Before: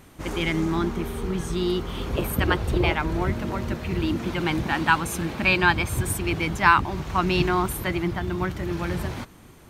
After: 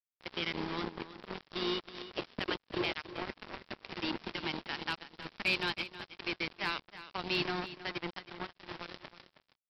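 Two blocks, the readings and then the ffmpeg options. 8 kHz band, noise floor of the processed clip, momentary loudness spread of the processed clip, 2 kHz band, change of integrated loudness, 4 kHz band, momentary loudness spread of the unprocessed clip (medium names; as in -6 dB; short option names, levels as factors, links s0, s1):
-25.0 dB, -85 dBFS, 13 LU, -12.5 dB, -13.0 dB, -5.0 dB, 9 LU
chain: -filter_complex "[0:a]highpass=200,lowshelf=f=440:g=-11,acrossover=split=480|3000[s0][s1][s2];[s1]acompressor=threshold=0.00891:ratio=4[s3];[s0][s3][s2]amix=inputs=3:normalize=0,aresample=11025,acrusher=bits=4:mix=0:aa=0.5,aresample=44100,asoftclip=type=hard:threshold=0.106,aecho=1:1:319:0.2,volume=0.75"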